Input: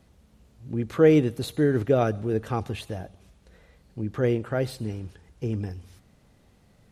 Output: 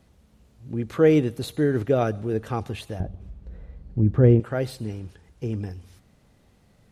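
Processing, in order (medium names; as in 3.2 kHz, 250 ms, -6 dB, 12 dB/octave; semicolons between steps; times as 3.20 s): 3.00–4.40 s: tilt EQ -4 dB/octave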